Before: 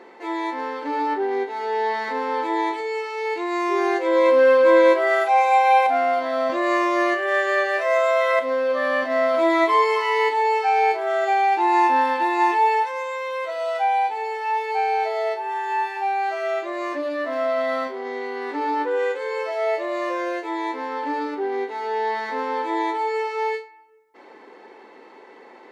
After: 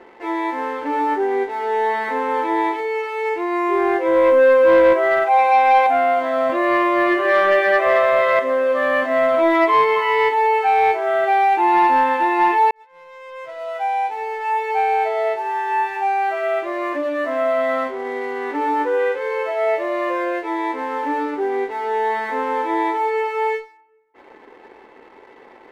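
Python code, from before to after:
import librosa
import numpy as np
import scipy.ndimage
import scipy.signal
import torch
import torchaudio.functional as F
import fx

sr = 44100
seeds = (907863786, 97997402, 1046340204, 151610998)

y = fx.lowpass(x, sr, hz=2500.0, slope=6, at=(3.29, 5.39))
y = fx.reverb_throw(y, sr, start_s=7.03, length_s=0.72, rt60_s=2.7, drr_db=0.5)
y = fx.edit(y, sr, fx.fade_in_span(start_s=12.71, length_s=2.07), tone=tone)
y = scipy.signal.sosfilt(scipy.signal.butter(4, 3200.0, 'lowpass', fs=sr, output='sos'), y)
y = fx.leveller(y, sr, passes=1)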